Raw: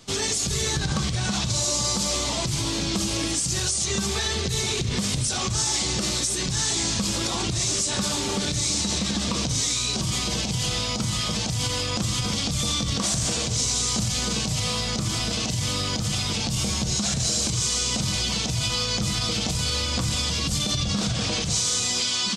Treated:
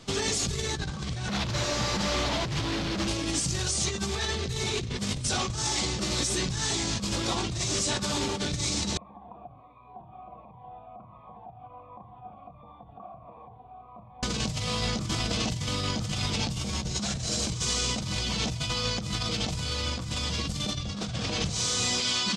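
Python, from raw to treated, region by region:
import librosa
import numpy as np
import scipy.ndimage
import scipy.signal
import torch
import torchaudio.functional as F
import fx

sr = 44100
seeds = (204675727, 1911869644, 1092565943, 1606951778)

y = fx.chain(x, sr, fx.clip_1bit(),
    fx.lowpass(hz=5000.0, slope=12), at=(1.28, 3.08))
y = fx.chain(y, sr, fx.formant_cascade(vowel='a'),
    fx.notch_cascade(direction='falling', hz=1.4), at=(8.97, 14.23))
y = fx.lowpass(y, sr, hz=3700.0, slope=6)
y = fx.over_compress(y, sr, threshold_db=-29.0, ratio=-0.5)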